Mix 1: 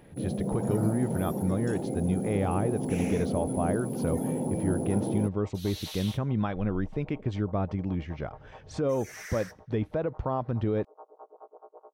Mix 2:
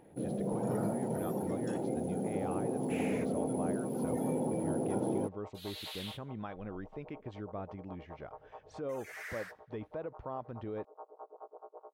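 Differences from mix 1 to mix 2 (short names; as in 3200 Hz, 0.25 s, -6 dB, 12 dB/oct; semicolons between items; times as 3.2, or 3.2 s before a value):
speech -10.0 dB; second sound: add bell 5800 Hz -12.5 dB 0.24 oct; master: add tone controls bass -7 dB, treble -6 dB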